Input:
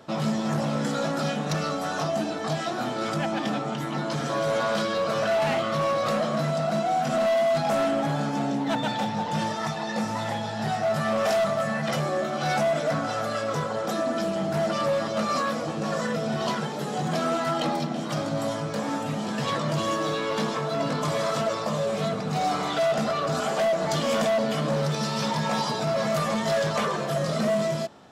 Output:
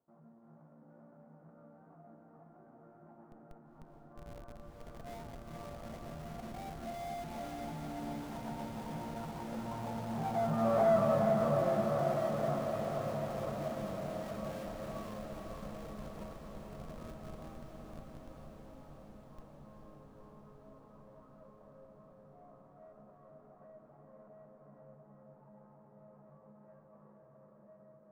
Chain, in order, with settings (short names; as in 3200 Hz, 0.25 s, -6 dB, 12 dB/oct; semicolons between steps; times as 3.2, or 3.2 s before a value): median filter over 25 samples; Doppler pass-by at 10.94, 15 m/s, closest 5.3 m; inverse Chebyshev low-pass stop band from 4900 Hz, stop band 60 dB; de-hum 87.4 Hz, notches 2; in parallel at -5.5 dB: Schmitt trigger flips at -46 dBFS; on the sum: diffused feedback echo 0.461 s, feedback 74%, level -4 dB; gain -3.5 dB